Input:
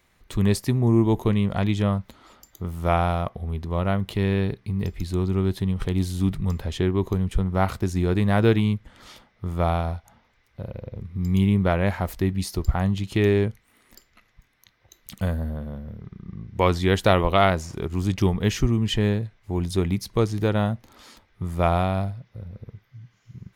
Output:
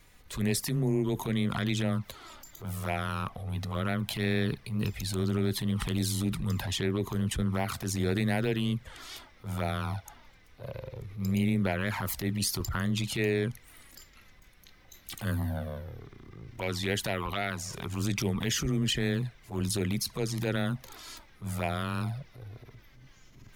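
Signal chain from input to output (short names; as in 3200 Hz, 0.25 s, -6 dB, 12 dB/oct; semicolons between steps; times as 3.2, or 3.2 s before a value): tilt +2 dB/oct; compressor 12:1, threshold -26 dBFS, peak gain reduction 13.5 dB; envelope flanger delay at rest 4.3 ms, full sweep at -24 dBFS; frequency shift +14 Hz; transient shaper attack -9 dB, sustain +3 dB; added noise brown -61 dBFS; gain +4 dB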